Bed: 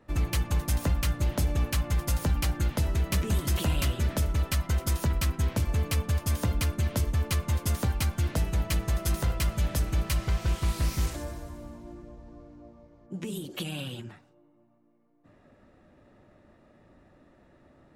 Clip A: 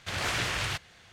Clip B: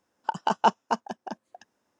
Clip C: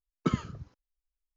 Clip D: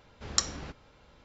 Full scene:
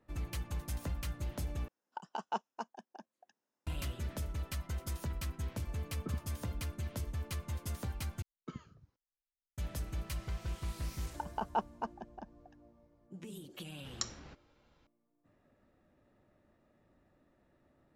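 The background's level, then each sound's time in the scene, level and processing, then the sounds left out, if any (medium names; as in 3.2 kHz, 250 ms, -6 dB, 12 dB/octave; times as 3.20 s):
bed -12 dB
1.68 s: replace with B -15.5 dB + high-pass 140 Hz
5.80 s: add C -15 dB + low-pass 1.1 kHz
8.22 s: replace with C -18 dB
10.91 s: add B -11 dB + low-pass 1.4 kHz 6 dB/octave
13.63 s: add D -11 dB
not used: A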